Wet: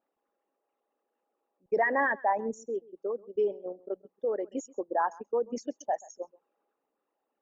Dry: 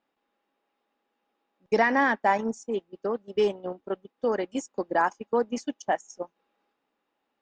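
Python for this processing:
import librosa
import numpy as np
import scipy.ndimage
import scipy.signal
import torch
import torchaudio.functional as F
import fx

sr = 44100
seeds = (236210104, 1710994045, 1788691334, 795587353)

y = fx.envelope_sharpen(x, sr, power=2.0)
y = y + 10.0 ** (-22.5 / 20.0) * np.pad(y, (int(132 * sr / 1000.0), 0))[:len(y)]
y = y * 10.0 ** (-4.0 / 20.0)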